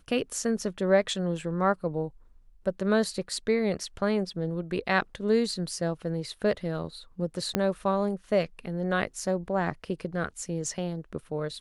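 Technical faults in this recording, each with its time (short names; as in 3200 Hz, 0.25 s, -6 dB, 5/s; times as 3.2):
7.55 pop -10 dBFS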